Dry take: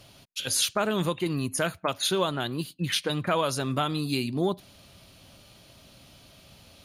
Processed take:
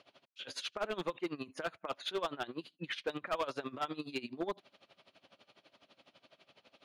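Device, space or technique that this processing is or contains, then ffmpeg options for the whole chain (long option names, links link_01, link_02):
helicopter radio: -af "highpass=350,lowpass=3000,aeval=exprs='val(0)*pow(10,-20*(0.5-0.5*cos(2*PI*12*n/s))/20)':channel_layout=same,asoftclip=type=hard:threshold=-27.5dB,volume=-1dB"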